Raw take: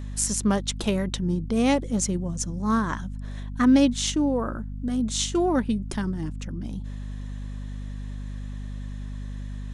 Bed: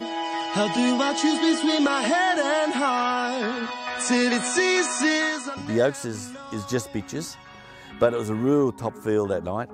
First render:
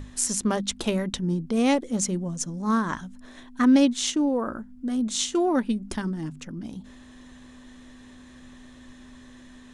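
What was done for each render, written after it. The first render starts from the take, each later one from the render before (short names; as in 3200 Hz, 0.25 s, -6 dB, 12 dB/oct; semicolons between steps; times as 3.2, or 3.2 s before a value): notches 50/100/150/200 Hz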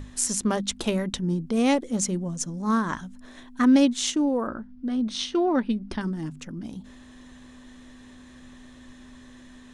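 4.47–6.01 polynomial smoothing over 15 samples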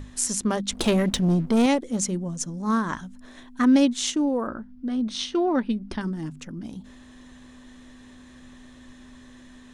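0.72–1.66 sample leveller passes 2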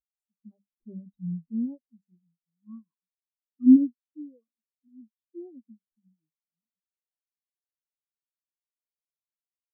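spectral expander 4:1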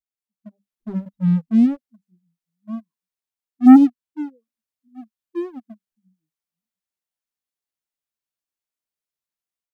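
AGC gain up to 7.5 dB; sample leveller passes 2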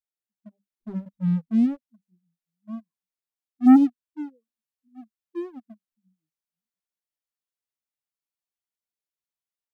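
gain -5.5 dB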